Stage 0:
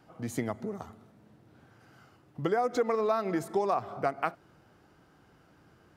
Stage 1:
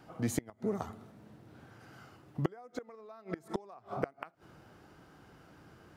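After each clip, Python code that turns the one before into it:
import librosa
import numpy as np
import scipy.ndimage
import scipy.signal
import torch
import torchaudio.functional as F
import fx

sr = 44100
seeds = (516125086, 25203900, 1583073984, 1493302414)

y = fx.gate_flip(x, sr, shuts_db=-21.0, range_db=-27)
y = F.gain(torch.from_numpy(y), 3.5).numpy()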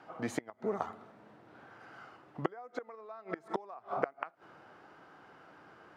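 y = fx.bandpass_q(x, sr, hz=1100.0, q=0.66)
y = F.gain(torch.from_numpy(y), 5.5).numpy()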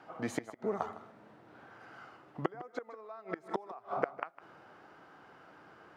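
y = x + 10.0 ** (-16.5 / 20.0) * np.pad(x, (int(156 * sr / 1000.0), 0))[:len(x)]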